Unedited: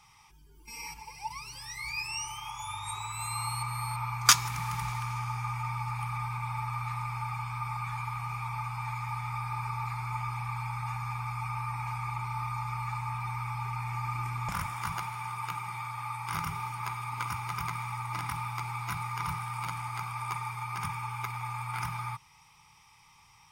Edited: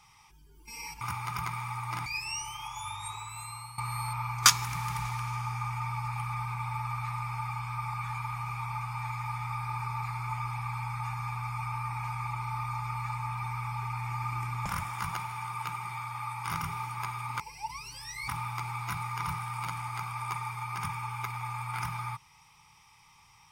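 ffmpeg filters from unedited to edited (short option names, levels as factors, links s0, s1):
-filter_complex "[0:a]asplit=6[s0][s1][s2][s3][s4][s5];[s0]atrim=end=1.012[s6];[s1]atrim=start=17.228:end=18.282[s7];[s2]atrim=start=1.888:end=3.61,asetpts=PTS-STARTPTS,afade=t=out:st=0.802:d=0.92:silence=0.199526[s8];[s3]atrim=start=3.61:end=17.232,asetpts=PTS-STARTPTS,afade=t=in:d=0.004:c=hsin:silence=0.199526[s9];[s4]atrim=start=1.008:end=1.892[s10];[s5]atrim=start=18.278[s11];[s6][s7]acrossfade=d=0.004:c1=hsin:c2=hsin[s12];[s8][s9]concat=n=2:v=0:a=1[s13];[s12][s13]acrossfade=d=0.004:c1=hsin:c2=hsin[s14];[s14][s10]acrossfade=d=0.004:c1=hsin:c2=hsin[s15];[s15][s11]acrossfade=d=0.004:c1=hsin:c2=hsin"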